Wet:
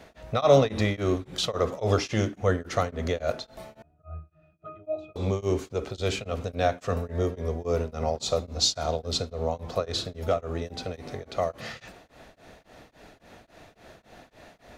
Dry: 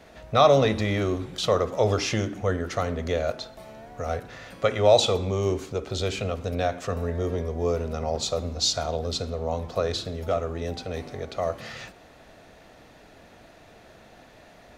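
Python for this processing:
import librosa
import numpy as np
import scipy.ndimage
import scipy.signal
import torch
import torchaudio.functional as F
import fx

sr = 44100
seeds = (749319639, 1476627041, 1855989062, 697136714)

y = fx.octave_resonator(x, sr, note='D#', decay_s=0.42, at=(3.82, 5.16))
y = y * np.abs(np.cos(np.pi * 3.6 * np.arange(len(y)) / sr))
y = y * librosa.db_to_amplitude(2.0)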